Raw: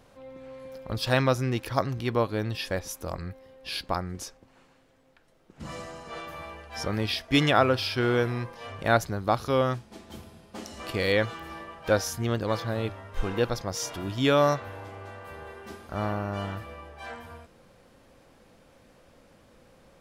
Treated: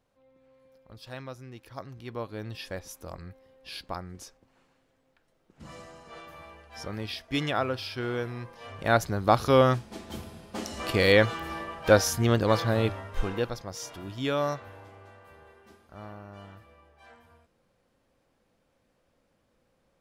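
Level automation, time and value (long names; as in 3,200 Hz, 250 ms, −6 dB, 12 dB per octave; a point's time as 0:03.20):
0:01.51 −17.5 dB
0:02.53 −7 dB
0:08.34 −7 dB
0:09.41 +4.5 dB
0:12.97 +4.5 dB
0:13.58 −6.5 dB
0:14.68 −6.5 dB
0:15.88 −14 dB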